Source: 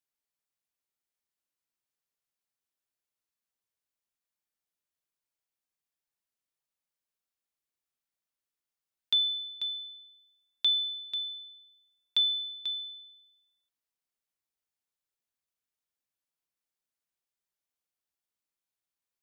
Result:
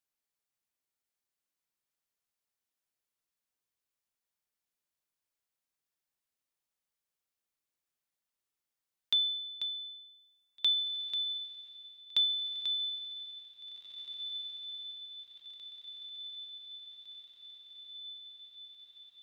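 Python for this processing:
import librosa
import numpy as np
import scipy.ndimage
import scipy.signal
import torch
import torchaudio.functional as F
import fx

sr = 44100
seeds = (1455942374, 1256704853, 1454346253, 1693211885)

p1 = fx.dynamic_eq(x, sr, hz=2600.0, q=1.5, threshold_db=-41.0, ratio=4.0, max_db=-5)
y = p1 + fx.echo_diffused(p1, sr, ms=1975, feedback_pct=68, wet_db=-11.0, dry=0)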